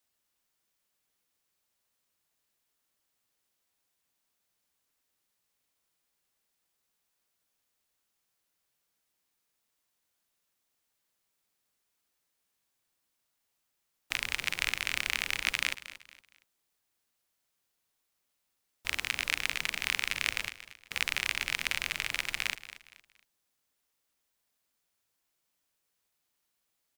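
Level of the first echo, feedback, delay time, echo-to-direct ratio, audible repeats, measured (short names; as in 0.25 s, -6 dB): -15.0 dB, 33%, 0.232 s, -14.5 dB, 3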